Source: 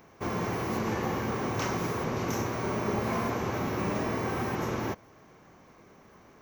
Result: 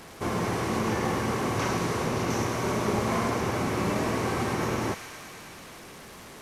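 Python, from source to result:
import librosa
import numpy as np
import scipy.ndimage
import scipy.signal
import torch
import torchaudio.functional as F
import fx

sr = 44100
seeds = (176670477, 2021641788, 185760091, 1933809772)

y = fx.delta_mod(x, sr, bps=64000, step_db=-43.0)
y = fx.echo_wet_highpass(y, sr, ms=107, feedback_pct=83, hz=1900.0, wet_db=-7.0)
y = y * librosa.db_to_amplitude(3.0)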